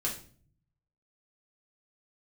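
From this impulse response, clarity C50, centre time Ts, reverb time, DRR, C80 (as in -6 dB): 8.0 dB, 23 ms, 0.45 s, -3.5 dB, 13.5 dB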